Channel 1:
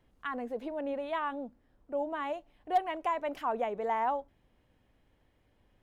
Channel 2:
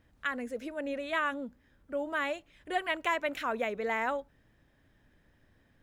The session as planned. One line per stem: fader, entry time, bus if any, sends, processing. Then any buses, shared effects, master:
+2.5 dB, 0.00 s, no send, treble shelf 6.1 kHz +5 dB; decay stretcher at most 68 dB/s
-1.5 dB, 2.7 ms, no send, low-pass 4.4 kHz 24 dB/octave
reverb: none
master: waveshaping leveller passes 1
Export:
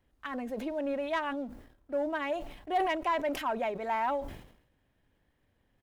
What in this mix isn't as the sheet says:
stem 1 +2.5 dB -> -4.0 dB; stem 2 -1.5 dB -> -9.0 dB

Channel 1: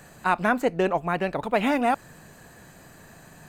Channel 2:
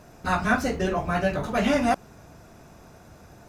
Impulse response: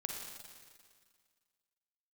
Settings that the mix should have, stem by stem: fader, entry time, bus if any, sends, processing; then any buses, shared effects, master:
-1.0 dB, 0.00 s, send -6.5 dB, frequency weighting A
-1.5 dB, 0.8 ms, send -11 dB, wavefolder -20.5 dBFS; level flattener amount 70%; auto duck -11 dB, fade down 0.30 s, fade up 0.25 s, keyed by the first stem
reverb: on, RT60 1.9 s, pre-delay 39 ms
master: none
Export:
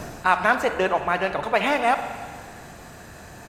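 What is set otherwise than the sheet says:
stem 1: send -6.5 dB -> -0.5 dB; stem 2: send off

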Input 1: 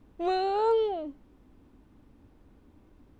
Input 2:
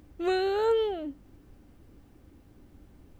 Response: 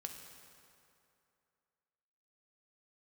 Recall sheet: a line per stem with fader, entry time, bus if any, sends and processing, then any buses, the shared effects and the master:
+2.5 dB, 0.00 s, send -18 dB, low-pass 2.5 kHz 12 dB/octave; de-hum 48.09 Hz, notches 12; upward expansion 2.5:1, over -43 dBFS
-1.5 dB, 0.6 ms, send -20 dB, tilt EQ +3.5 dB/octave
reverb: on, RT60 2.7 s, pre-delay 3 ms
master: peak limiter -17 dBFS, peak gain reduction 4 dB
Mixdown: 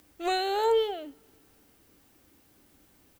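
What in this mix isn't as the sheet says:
stem 1: send off; stem 2: polarity flipped

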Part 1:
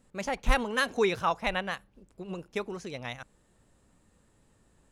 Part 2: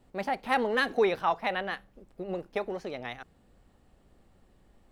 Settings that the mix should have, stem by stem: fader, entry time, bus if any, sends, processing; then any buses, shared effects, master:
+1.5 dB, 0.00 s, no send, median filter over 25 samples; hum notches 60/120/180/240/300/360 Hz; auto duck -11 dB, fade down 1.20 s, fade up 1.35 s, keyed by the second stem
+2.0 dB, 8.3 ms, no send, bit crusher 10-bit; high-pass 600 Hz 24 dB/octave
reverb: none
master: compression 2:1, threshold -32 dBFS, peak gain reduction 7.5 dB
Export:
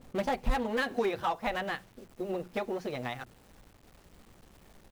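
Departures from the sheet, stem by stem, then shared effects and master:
stem 1 +1.5 dB -> +11.5 dB; stem 2: missing high-pass 600 Hz 24 dB/octave

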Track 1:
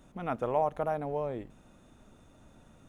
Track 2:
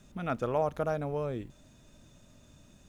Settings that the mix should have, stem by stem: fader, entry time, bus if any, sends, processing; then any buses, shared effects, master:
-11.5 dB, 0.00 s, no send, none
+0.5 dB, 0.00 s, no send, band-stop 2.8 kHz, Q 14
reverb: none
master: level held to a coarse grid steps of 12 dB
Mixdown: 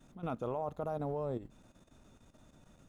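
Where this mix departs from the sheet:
stem 1 -11.5 dB -> -3.0 dB; stem 2 +0.5 dB -> -7.0 dB

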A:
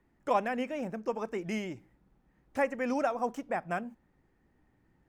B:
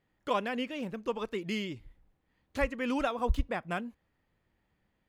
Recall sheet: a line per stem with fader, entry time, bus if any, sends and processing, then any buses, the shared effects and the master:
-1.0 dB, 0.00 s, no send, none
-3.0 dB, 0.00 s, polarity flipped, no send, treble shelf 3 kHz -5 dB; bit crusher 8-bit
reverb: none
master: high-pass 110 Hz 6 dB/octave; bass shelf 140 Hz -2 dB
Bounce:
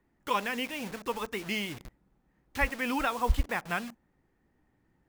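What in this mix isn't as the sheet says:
stem B -3.0 dB -> +4.5 dB; master: missing high-pass 110 Hz 6 dB/octave

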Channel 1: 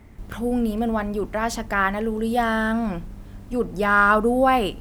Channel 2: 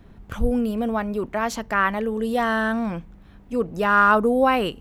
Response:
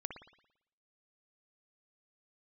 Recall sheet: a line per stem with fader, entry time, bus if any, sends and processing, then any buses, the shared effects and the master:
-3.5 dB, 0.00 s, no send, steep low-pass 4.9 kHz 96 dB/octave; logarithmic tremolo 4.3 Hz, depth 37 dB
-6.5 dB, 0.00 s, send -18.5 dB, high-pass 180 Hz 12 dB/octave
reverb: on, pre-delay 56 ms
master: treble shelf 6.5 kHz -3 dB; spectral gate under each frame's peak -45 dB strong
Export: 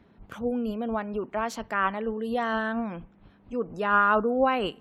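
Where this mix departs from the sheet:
stem 1 -3.5 dB -> -10.0 dB; stem 2: polarity flipped

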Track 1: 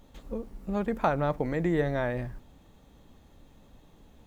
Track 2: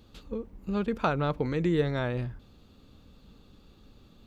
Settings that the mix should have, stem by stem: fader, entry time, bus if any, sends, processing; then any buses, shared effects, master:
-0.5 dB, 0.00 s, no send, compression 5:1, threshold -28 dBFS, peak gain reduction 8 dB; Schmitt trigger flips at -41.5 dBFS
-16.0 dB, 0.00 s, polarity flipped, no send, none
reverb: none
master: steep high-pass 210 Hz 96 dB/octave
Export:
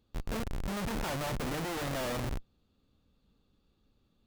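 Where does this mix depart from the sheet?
stem 1: missing compression 5:1, threshold -28 dBFS, peak gain reduction 8 dB; master: missing steep high-pass 210 Hz 96 dB/octave

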